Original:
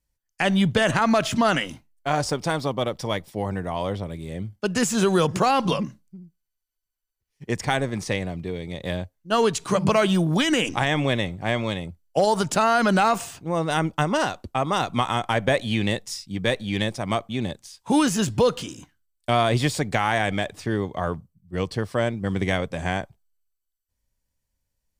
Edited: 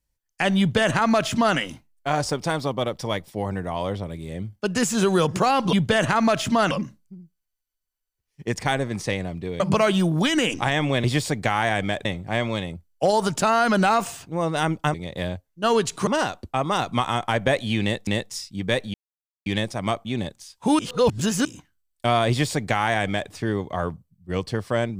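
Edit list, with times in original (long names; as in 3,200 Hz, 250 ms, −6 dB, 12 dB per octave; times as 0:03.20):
0:00.59–0:01.57: duplicate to 0:05.73
0:08.62–0:09.75: move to 0:14.08
0:15.83–0:16.08: repeat, 2 plays
0:16.70: splice in silence 0.52 s
0:18.03–0:18.69: reverse
0:19.53–0:20.54: duplicate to 0:11.19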